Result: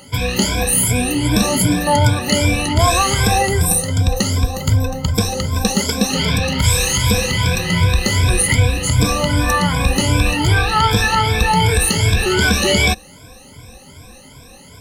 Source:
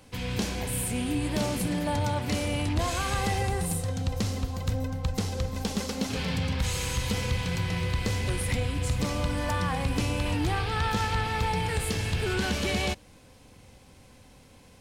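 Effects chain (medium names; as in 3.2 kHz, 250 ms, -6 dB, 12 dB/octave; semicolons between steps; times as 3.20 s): drifting ripple filter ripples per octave 1.7, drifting +2.6 Hz, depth 23 dB; treble shelf 4.6 kHz +5 dB; trim +7.5 dB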